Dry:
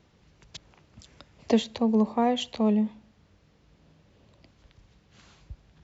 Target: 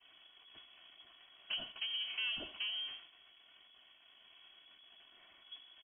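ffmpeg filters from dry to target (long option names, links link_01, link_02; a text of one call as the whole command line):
ffmpeg -i in.wav -filter_complex "[0:a]aeval=exprs='val(0)+0.5*0.0266*sgn(val(0))':channel_layout=same,flanger=delay=6.5:depth=3.1:regen=62:speed=1.2:shape=triangular,aecho=1:1:81|162|243:0.2|0.0658|0.0217,agate=range=-33dB:threshold=-28dB:ratio=3:detection=peak,acrossover=split=120|920|1100[link_01][link_02][link_03][link_04];[link_02]acrusher=bits=6:mode=log:mix=0:aa=0.000001[link_05];[link_01][link_05][link_03][link_04]amix=inputs=4:normalize=0,acompressor=threshold=-34dB:ratio=5,aecho=1:1:2.6:0.61,asoftclip=type=tanh:threshold=-34.5dB,lowpass=frequency=2900:width_type=q:width=0.5098,lowpass=frequency=2900:width_type=q:width=0.6013,lowpass=frequency=2900:width_type=q:width=0.9,lowpass=frequency=2900:width_type=q:width=2.563,afreqshift=-3400,volume=1dB" out.wav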